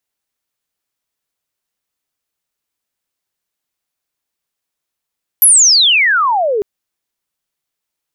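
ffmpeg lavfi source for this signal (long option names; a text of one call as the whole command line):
ffmpeg -f lavfi -i "aevalsrc='pow(10,(-3.5-9*t/1.2)/20)*sin(2*PI*12000*1.2/log(390/12000)*(exp(log(390/12000)*t/1.2)-1))':duration=1.2:sample_rate=44100" out.wav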